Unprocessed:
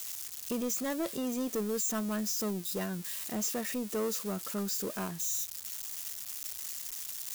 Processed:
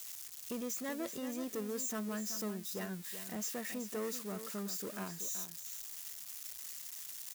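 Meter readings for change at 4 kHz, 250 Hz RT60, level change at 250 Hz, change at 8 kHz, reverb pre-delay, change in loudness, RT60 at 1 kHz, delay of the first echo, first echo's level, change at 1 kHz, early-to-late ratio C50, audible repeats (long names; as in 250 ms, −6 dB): −6.0 dB, no reverb audible, −6.0 dB, −6.0 dB, no reverb audible, −6.0 dB, no reverb audible, 379 ms, −10.5 dB, −5.5 dB, no reverb audible, 1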